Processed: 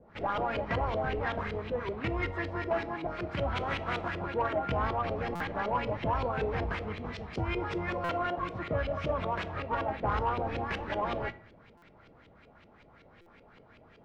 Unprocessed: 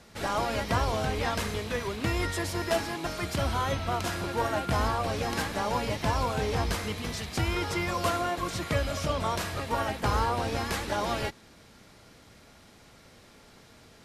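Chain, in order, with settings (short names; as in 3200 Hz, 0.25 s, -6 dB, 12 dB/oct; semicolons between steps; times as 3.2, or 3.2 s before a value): 3.55–4.03 spectral contrast lowered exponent 0.53; LFO low-pass saw up 5.3 Hz 410–3100 Hz; soft clip -15.5 dBFS, distortion -23 dB; on a send at -13 dB: reverb RT60 0.60 s, pre-delay 6 ms; on the sum: stuck buffer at 5.35/8.04/11.77/13.21, samples 256, times 8; gain -4.5 dB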